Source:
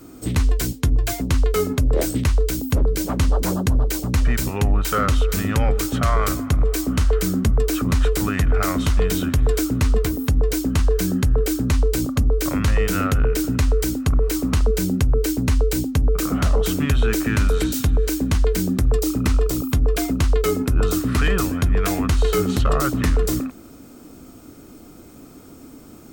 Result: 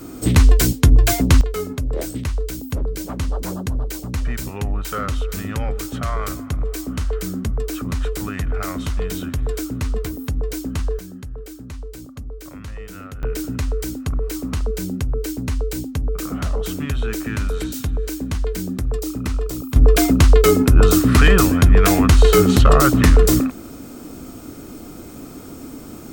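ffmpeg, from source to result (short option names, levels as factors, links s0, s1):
-af "asetnsamples=n=441:p=0,asendcmd='1.41 volume volume -5dB;10.99 volume volume -15dB;13.23 volume volume -4.5dB;19.76 volume volume 7dB',volume=2.24"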